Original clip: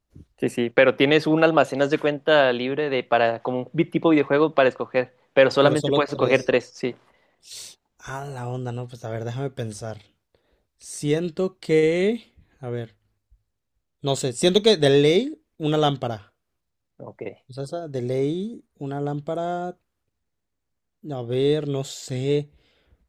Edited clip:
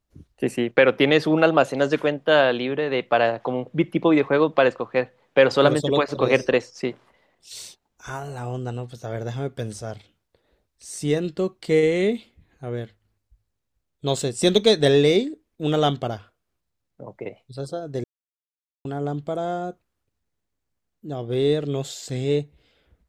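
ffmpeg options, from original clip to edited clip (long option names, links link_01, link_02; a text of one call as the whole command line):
ffmpeg -i in.wav -filter_complex "[0:a]asplit=3[link_01][link_02][link_03];[link_01]atrim=end=18.04,asetpts=PTS-STARTPTS,afade=type=out:start_time=18.036:duration=0.004:curve=hsin[link_04];[link_02]atrim=start=18.04:end=18.85,asetpts=PTS-STARTPTS,volume=0[link_05];[link_03]atrim=start=18.85,asetpts=PTS-STARTPTS,afade=type=in:duration=0.004:curve=hsin[link_06];[link_04][link_05][link_06]concat=n=3:v=0:a=1" out.wav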